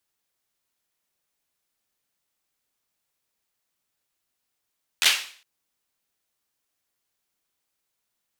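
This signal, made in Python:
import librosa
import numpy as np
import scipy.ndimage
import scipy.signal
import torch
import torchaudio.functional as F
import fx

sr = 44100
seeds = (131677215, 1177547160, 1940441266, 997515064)

y = fx.drum_clap(sr, seeds[0], length_s=0.41, bursts=4, spacing_ms=12, hz=2800.0, decay_s=0.47)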